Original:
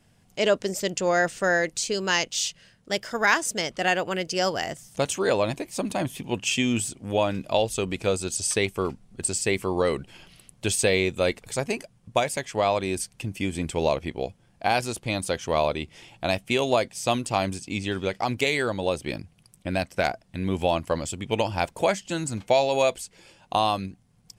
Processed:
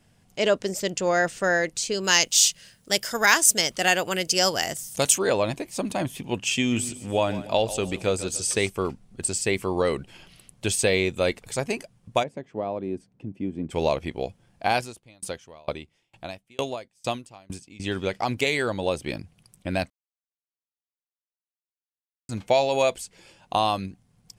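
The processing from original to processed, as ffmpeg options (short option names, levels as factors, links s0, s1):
-filter_complex "[0:a]asplit=3[s0][s1][s2];[s0]afade=t=out:st=2.03:d=0.02[s3];[s1]aemphasis=mode=production:type=75kf,afade=t=in:st=2.03:d=0.02,afade=t=out:st=5.17:d=0.02[s4];[s2]afade=t=in:st=5.17:d=0.02[s5];[s3][s4][s5]amix=inputs=3:normalize=0,asettb=1/sr,asplit=3[s6][s7][s8];[s6]atrim=end=6.574[s9];[s7]atrim=start=6.57:end=8.7,asetpts=PTS-STARTPTS,afade=t=in:d=0.004:c=qsin,afade=t=out:st=2.126:d=0.004:c=qsin,aecho=1:1:144|288|432|576:0.188|0.0753|0.0301|0.0121,atrim=end_sample=93933[s10];[s8]atrim=start=8.696[s11];[s9][s10]acrossfade=d=0.004:c1=hsin:c2=qsin[s12];[s12][s11]acrossfade=d=0.004:c1=qsin:c2=hsin,asplit=3[s13][s14][s15];[s13]afade=t=out:st=12.22:d=0.02[s16];[s14]bandpass=f=260:t=q:w=1,afade=t=in:st=12.22:d=0.02,afade=t=out:st=13.7:d=0.02[s17];[s15]afade=t=in:st=13.7:d=0.02[s18];[s16][s17][s18]amix=inputs=3:normalize=0,asettb=1/sr,asplit=3[s19][s20][s21];[s19]atrim=end=14.774[s22];[s20]atrim=start=14.77:end=17.8,asetpts=PTS-STARTPTS,afade=t=in:d=0.004:c=qsin,afade=t=out:st=3.026:d=0.004:c=qsin,aeval=exprs='val(0)*pow(10,-33*if(lt(mod(2.2*n/s,1),2*abs(2.2)/1000),1-mod(2.2*n/s,1)/(2*abs(2.2)/1000),(mod(2.2*n/s,1)-2*abs(2.2)/1000)/(1-2*abs(2.2)/1000))/20)':c=same[s23];[s21]atrim=start=17.796[s24];[s22][s23]acrossfade=d=0.004:c1=hsin:c2=qsin[s25];[s25][s24]acrossfade=d=0.004:c1=qsin:c2=hsin,asplit=3[s26][s27][s28];[s26]atrim=end=19.9,asetpts=PTS-STARTPTS,afade=t=out:st=19.896:d=0.004:c=hsin[s29];[s27]atrim=start=19.9:end=22.29,asetpts=PTS-STARTPTS,volume=0[s30];[s28]atrim=start=22.29,asetpts=PTS-STARTPTS,afade=t=in:d=0.004:c=hsin[s31];[s29][s30][s31]concat=n=3:v=0:a=1"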